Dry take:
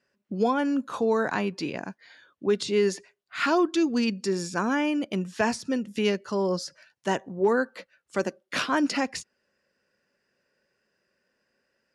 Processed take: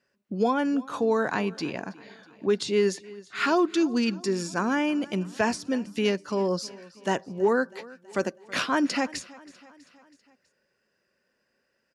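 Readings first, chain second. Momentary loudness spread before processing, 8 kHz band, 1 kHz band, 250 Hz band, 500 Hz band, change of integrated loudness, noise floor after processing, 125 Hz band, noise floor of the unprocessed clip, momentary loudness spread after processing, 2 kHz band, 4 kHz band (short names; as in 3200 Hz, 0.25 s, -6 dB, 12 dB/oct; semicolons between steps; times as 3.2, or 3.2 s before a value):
10 LU, 0.0 dB, 0.0 dB, 0.0 dB, 0.0 dB, 0.0 dB, -75 dBFS, 0.0 dB, -76 dBFS, 13 LU, 0.0 dB, 0.0 dB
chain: feedback echo 0.324 s, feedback 57%, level -21 dB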